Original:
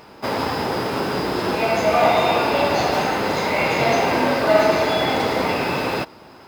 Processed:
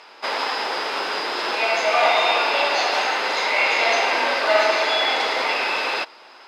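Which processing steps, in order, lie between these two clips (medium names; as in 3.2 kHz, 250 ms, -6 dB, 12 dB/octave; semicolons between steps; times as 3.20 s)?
band-pass 400–3900 Hz; tilt EQ +4 dB/octave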